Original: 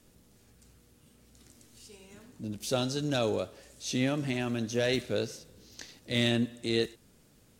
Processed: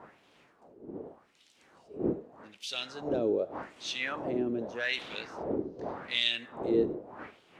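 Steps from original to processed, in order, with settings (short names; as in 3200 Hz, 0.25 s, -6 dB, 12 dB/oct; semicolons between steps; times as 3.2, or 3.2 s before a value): wind noise 320 Hz -34 dBFS; wah 0.84 Hz 340–3200 Hz, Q 2.6; gain +6 dB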